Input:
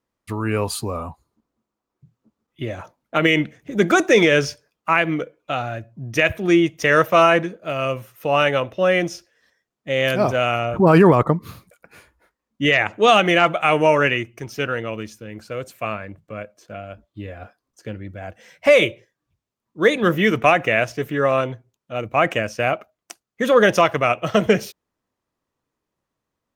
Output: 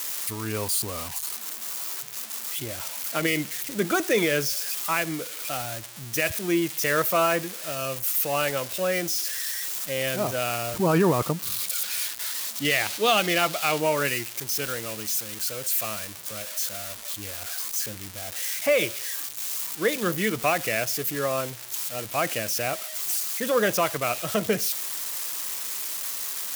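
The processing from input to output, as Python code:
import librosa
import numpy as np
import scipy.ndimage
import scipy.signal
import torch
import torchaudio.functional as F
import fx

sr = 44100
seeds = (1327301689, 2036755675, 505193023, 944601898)

y = x + 0.5 * 10.0 ** (-12.0 / 20.0) * np.diff(np.sign(x), prepend=np.sign(x[:1]))
y = fx.dynamic_eq(y, sr, hz=4000.0, q=1.3, threshold_db=-34.0, ratio=4.0, max_db=6, at=(11.34, 13.8))
y = y * librosa.db_to_amplitude(-8.5)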